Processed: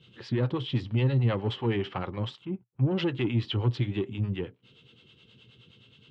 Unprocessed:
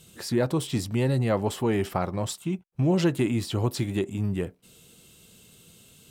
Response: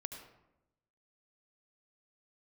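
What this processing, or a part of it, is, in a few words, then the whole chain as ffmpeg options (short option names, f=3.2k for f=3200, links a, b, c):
guitar amplifier with harmonic tremolo: -filter_complex "[0:a]acrossover=split=470[a][b];[a]aeval=exprs='val(0)*(1-0.7/2+0.7/2*cos(2*PI*9.5*n/s))':c=same[c];[b]aeval=exprs='val(0)*(1-0.7/2-0.7/2*cos(2*PI*9.5*n/s))':c=same[d];[c][d]amix=inputs=2:normalize=0,asoftclip=type=tanh:threshold=-20.5dB,highpass=92,equalizer=f=120:t=q:w=4:g=9,equalizer=f=170:t=q:w=4:g=-6,equalizer=f=660:t=q:w=4:g=-9,equalizer=f=3.1k:t=q:w=4:g=7,lowpass=f=3.7k:w=0.5412,lowpass=f=3.7k:w=1.3066,asplit=3[e][f][g];[e]afade=t=out:st=2.44:d=0.02[h];[f]lowpass=1.3k,afade=t=in:st=2.44:d=0.02,afade=t=out:st=2.9:d=0.02[i];[g]afade=t=in:st=2.9:d=0.02[j];[h][i][j]amix=inputs=3:normalize=0,volume=1.5dB"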